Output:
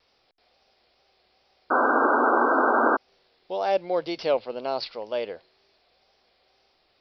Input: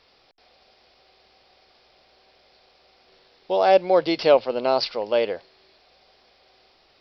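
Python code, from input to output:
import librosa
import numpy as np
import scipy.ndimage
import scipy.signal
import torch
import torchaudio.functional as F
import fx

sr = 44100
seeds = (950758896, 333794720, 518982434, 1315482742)

y = fx.wow_flutter(x, sr, seeds[0], rate_hz=2.1, depth_cents=57.0)
y = fx.spec_paint(y, sr, seeds[1], shape='noise', start_s=1.7, length_s=1.27, low_hz=230.0, high_hz=1600.0, level_db=-13.0)
y = y * 10.0 ** (-7.5 / 20.0)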